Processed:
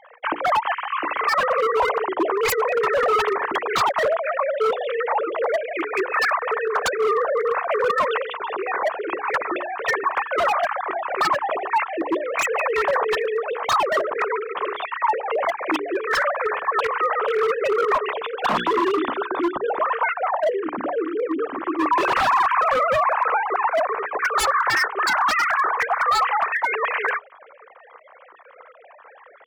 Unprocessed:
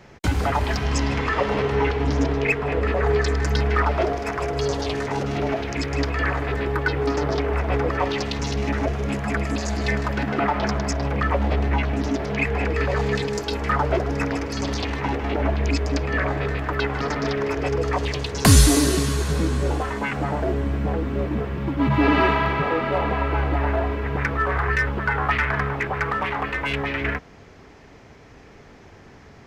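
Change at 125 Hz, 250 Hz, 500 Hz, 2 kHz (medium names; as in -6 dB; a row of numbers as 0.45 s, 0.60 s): -26.0 dB, -6.5 dB, +2.5 dB, +2.5 dB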